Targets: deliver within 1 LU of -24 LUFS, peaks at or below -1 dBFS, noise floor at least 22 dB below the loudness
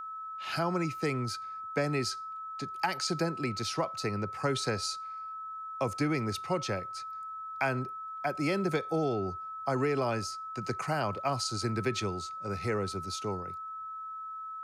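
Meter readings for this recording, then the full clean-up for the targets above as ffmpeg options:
steady tone 1.3 kHz; tone level -38 dBFS; loudness -33.5 LUFS; peak level -17.5 dBFS; loudness target -24.0 LUFS
-> -af "bandreject=f=1300:w=30"
-af "volume=2.99"

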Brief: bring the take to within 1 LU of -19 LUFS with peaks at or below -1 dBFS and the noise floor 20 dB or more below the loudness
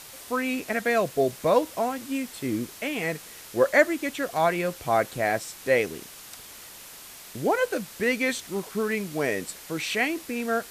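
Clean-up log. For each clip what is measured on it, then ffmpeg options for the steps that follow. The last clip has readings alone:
noise floor -45 dBFS; noise floor target -47 dBFS; loudness -26.5 LUFS; peak level -6.0 dBFS; loudness target -19.0 LUFS
-> -af "afftdn=nr=6:nf=-45"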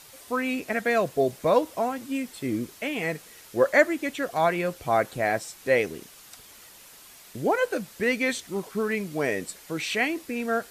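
noise floor -50 dBFS; loudness -26.5 LUFS; peak level -6.0 dBFS; loudness target -19.0 LUFS
-> -af "volume=2.37,alimiter=limit=0.891:level=0:latency=1"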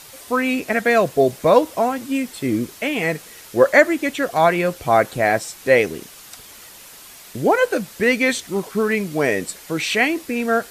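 loudness -19.0 LUFS; peak level -1.0 dBFS; noise floor -42 dBFS

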